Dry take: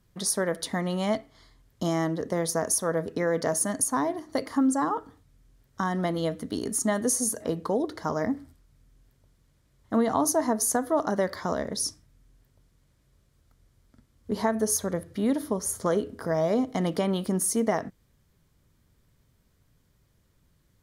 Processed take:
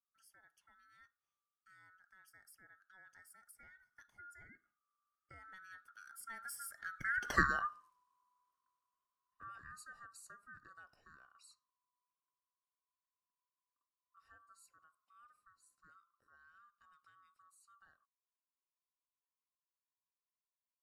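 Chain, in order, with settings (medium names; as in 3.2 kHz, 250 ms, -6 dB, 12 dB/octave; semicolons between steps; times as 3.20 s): split-band scrambler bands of 1 kHz; Doppler pass-by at 7.35 s, 29 m/s, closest 1.6 m; trim +2.5 dB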